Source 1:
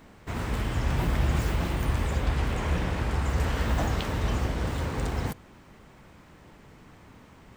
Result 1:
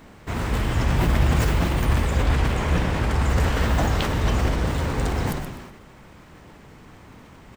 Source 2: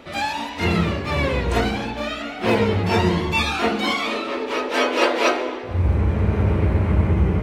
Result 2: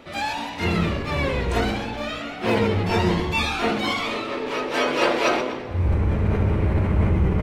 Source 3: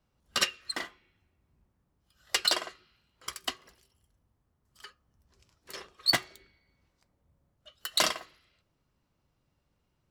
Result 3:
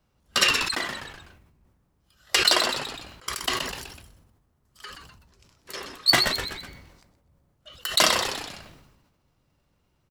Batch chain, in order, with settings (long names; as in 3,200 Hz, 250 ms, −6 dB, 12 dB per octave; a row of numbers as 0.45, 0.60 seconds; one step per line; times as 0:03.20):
echo with shifted repeats 125 ms, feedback 38%, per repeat −110 Hz, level −13 dB
level that may fall only so fast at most 46 dB per second
loudness normalisation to −23 LKFS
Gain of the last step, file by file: +5.0, −3.0, +5.5 decibels